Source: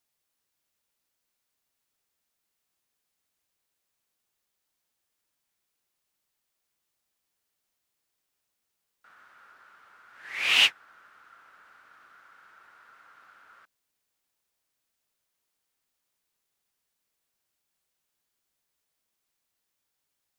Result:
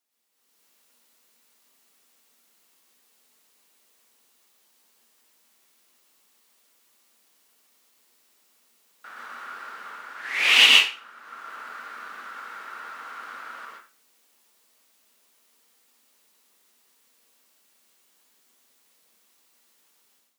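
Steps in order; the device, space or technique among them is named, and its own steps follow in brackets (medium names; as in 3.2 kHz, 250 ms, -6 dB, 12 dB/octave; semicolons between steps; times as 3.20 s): far laptop microphone (reverberation RT60 0.35 s, pre-delay 110 ms, DRR -0.5 dB; high-pass 200 Hz 24 dB/octave; level rider gain up to 14.5 dB); trim -1 dB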